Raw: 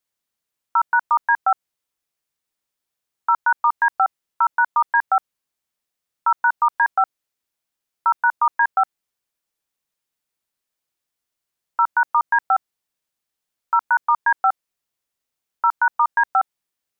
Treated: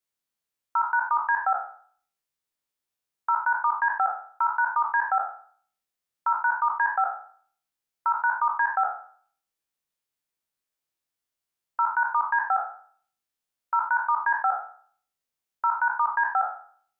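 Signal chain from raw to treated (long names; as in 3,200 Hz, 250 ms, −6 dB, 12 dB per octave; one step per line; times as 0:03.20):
peak hold with a decay on every bin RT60 0.51 s
level −6.5 dB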